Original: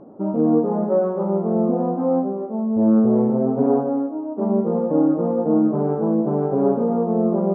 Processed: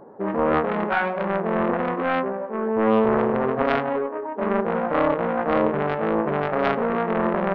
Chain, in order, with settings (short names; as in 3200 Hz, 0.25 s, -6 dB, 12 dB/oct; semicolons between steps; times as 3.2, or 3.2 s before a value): self-modulated delay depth 0.73 ms; formant shift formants +5 st; gain -2 dB